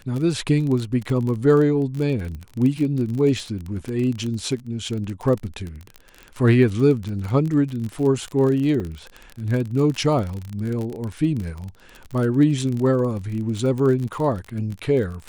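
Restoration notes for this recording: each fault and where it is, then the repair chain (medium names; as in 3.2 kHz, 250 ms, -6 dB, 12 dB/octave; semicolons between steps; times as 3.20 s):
crackle 35 per s -26 dBFS
8.80 s: dropout 3.5 ms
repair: de-click; interpolate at 8.80 s, 3.5 ms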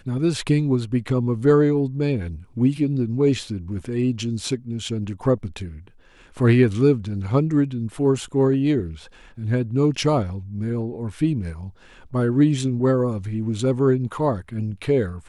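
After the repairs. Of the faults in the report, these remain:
nothing left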